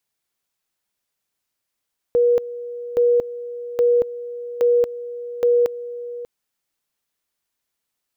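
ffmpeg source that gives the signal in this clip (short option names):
-f lavfi -i "aevalsrc='pow(10,(-12.5-15.5*gte(mod(t,0.82),0.23))/20)*sin(2*PI*481*t)':d=4.1:s=44100"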